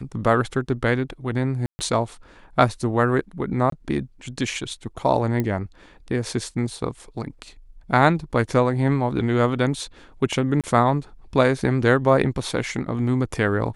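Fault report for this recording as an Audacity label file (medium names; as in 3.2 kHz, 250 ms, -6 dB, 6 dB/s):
1.660000	1.790000	dropout 130 ms
3.700000	3.720000	dropout 23 ms
5.400000	5.400000	pop -12 dBFS
10.610000	10.640000	dropout 27 ms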